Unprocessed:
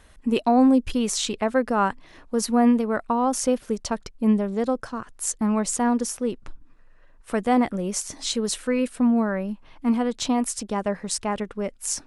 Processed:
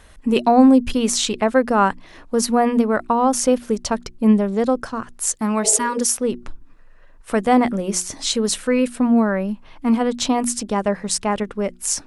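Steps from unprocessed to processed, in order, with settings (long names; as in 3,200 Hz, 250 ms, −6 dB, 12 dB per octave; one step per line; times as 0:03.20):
0:05.34–0:06.18: spectral tilt +2 dB per octave
0:05.66–0:05.99: healed spectral selection 380–860 Hz both
mains-hum notches 60/120/180/240/300/360 Hz
level +5.5 dB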